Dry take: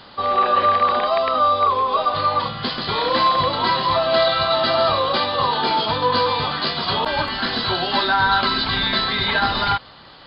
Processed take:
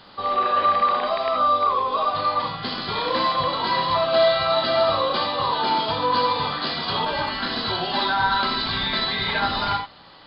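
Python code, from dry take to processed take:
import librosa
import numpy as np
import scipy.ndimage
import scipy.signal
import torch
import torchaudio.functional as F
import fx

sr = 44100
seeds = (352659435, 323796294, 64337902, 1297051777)

y = fx.rev_gated(x, sr, seeds[0], gate_ms=100, shape='rising', drr_db=3.5)
y = y * librosa.db_to_amplitude(-5.0)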